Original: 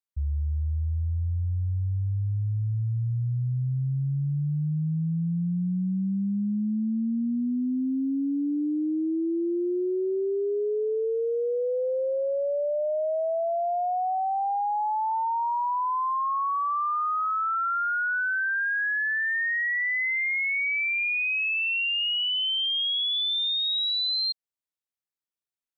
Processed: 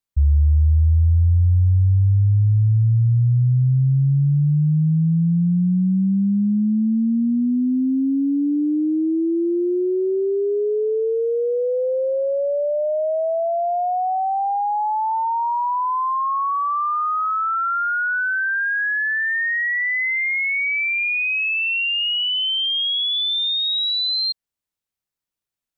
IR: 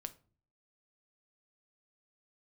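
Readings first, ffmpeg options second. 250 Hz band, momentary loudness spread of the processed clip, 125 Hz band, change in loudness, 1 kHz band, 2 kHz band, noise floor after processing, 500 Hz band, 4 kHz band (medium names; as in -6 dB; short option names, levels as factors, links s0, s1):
+8.0 dB, 5 LU, +11.0 dB, +7.0 dB, +5.5 dB, +5.0 dB, under -85 dBFS, +6.0 dB, +5.0 dB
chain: -af "lowshelf=f=160:g=9,volume=1.78"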